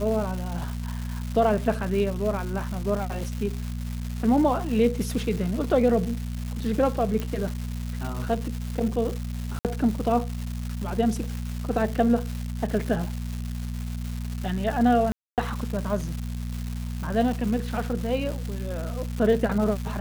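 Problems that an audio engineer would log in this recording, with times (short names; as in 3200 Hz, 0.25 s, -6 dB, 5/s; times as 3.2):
crackle 450/s -31 dBFS
hum 60 Hz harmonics 4 -31 dBFS
7.2 pop
9.59–9.65 gap 58 ms
15.12–15.38 gap 0.258 s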